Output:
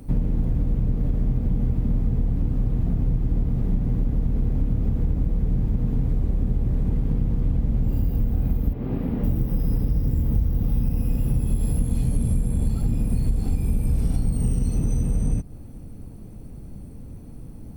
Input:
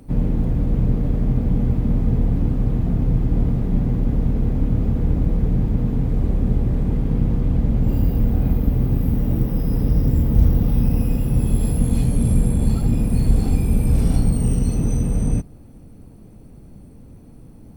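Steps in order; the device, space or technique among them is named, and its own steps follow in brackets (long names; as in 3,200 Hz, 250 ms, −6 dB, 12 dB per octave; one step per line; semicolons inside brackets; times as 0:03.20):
0:08.73–0:09.24: three-way crossover with the lows and the highs turned down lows −15 dB, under 200 Hz, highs −19 dB, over 3,600 Hz
ASMR close-microphone chain (low-shelf EQ 140 Hz +6 dB; downward compressor 6 to 1, threshold −18 dBFS, peak gain reduction 14 dB; high-shelf EQ 7,600 Hz +4 dB)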